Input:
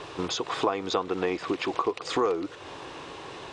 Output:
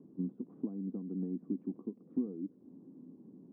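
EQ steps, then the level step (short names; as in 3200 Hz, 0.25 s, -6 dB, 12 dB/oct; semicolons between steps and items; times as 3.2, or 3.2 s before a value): Butterworth band-pass 220 Hz, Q 3.2; air absorption 390 m; +6.0 dB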